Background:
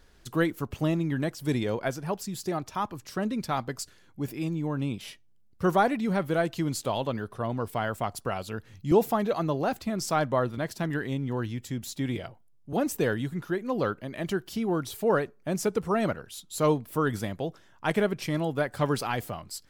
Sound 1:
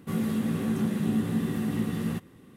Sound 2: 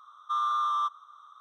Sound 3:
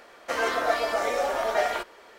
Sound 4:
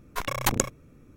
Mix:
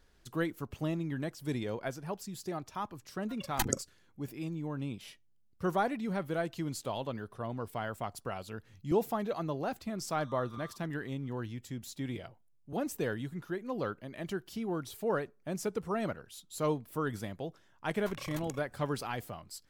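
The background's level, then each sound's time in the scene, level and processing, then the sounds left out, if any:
background -7.5 dB
3.13 add 4 -6.5 dB + spectral noise reduction 22 dB
9.88 add 2 -18 dB + LFO notch saw up 4.4 Hz 560–1600 Hz
17.9 add 4 -10.5 dB + compressor, threshold -30 dBFS
not used: 1, 3

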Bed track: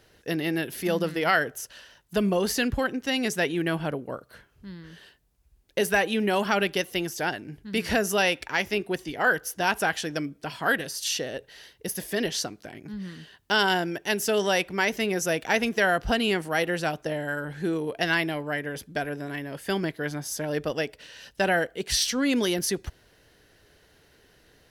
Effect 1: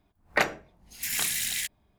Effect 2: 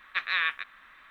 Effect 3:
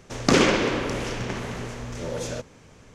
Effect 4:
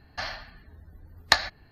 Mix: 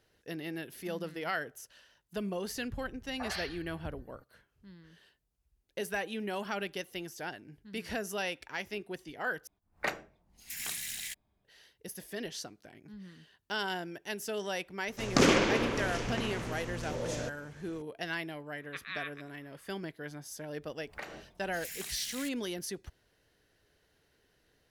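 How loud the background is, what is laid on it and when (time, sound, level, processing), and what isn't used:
bed track -12 dB
2.53 add 4 -2.5 dB + three bands offset in time lows, mids, highs 0.49/0.59 s, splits 230/1400 Hz
9.47 replace with 1 -9.5 dB
14.88 add 3 -5.5 dB
18.58 add 2 -13 dB
20.62 add 1 -2 dB + compressor 5:1, threshold -38 dBFS

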